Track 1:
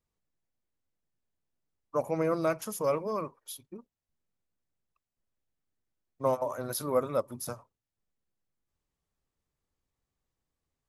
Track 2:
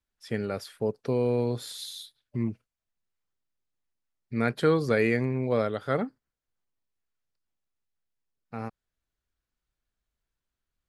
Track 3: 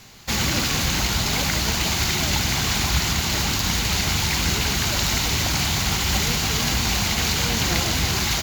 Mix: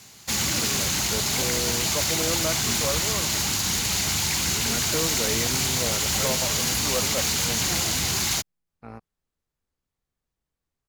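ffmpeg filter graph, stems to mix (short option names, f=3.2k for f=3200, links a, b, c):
-filter_complex "[0:a]volume=-1dB[a];[1:a]tremolo=f=170:d=0.571,adelay=300,volume=-3dB[b];[2:a]highpass=77,equalizer=f=9.3k:w=0.78:g=11,volume=-5dB[c];[a][b][c]amix=inputs=3:normalize=0,aeval=exprs='0.141*(abs(mod(val(0)/0.141+3,4)-2)-1)':c=same"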